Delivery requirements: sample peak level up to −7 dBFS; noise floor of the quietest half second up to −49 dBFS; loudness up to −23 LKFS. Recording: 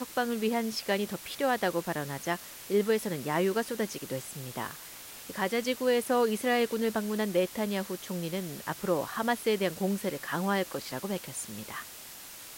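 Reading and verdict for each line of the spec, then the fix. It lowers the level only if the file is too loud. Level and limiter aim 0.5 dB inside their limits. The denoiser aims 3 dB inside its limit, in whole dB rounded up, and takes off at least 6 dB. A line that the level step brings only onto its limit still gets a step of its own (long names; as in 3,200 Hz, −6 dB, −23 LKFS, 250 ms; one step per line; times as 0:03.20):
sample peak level −15.5 dBFS: in spec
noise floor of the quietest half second −46 dBFS: out of spec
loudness −31.0 LKFS: in spec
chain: broadband denoise 6 dB, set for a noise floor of −46 dBFS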